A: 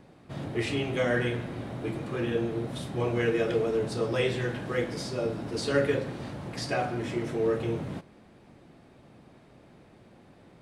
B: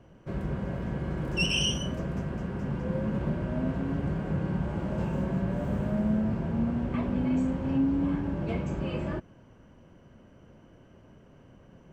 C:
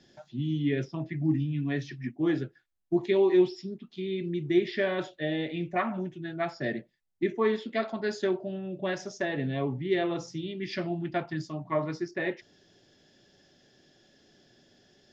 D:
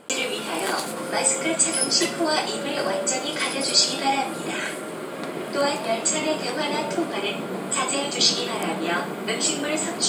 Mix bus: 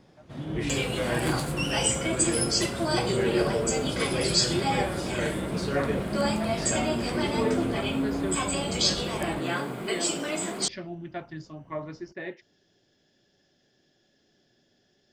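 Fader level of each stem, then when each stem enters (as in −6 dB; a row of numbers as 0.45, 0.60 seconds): −3.5, −4.0, −6.0, −5.5 decibels; 0.00, 0.20, 0.00, 0.60 seconds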